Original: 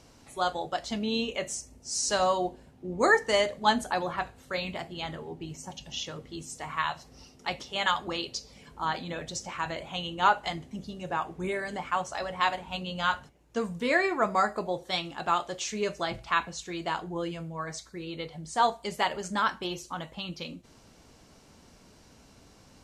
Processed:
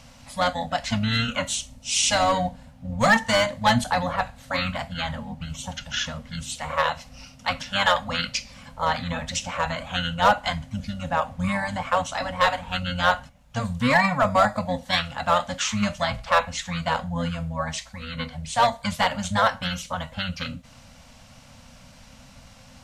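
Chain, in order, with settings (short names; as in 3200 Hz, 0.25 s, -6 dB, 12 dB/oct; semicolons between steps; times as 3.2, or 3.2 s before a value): in parallel at -4.5 dB: wavefolder -20 dBFS; on the sum: dynamic EQ 540 Hz, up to -4 dB, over -43 dBFS, Q 4.7; harmoniser -12 st -2 dB; Chebyshev band-stop 260–520 Hz, order 3; gain +2.5 dB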